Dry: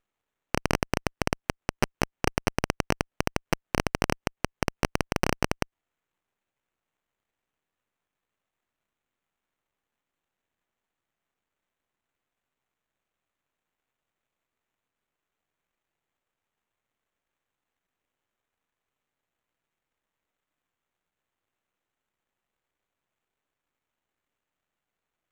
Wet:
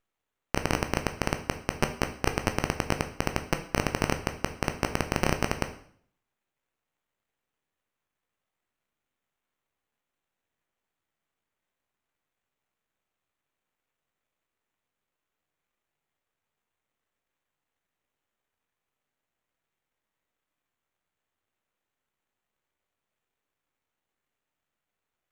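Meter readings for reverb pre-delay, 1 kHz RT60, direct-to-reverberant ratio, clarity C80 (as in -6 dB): 12 ms, 0.55 s, 6.0 dB, 14.5 dB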